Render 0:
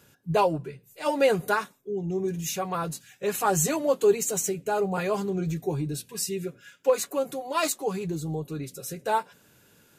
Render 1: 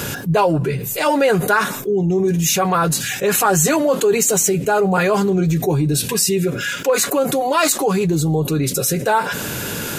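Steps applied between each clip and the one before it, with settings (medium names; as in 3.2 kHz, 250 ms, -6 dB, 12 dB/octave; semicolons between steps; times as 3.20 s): dynamic bell 1.5 kHz, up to +5 dB, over -43 dBFS, Q 2.4; level flattener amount 70%; trim +3 dB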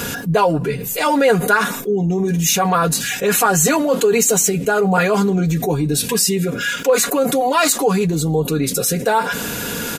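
comb 4.2 ms, depth 46%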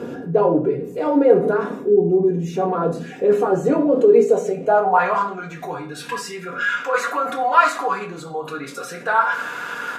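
band-pass sweep 380 Hz -> 1.3 kHz, 4.10–5.29 s; simulated room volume 53 m³, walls mixed, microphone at 0.49 m; trim +3.5 dB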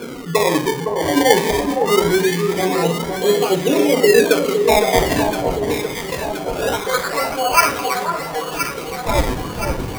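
decimation with a swept rate 23×, swing 100% 0.23 Hz; on a send: echo whose repeats swap between lows and highs 511 ms, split 1.2 kHz, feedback 74%, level -5 dB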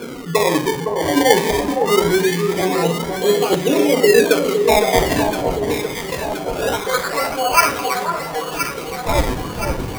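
crackling interface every 0.93 s, samples 512, repeat, from 0.73 s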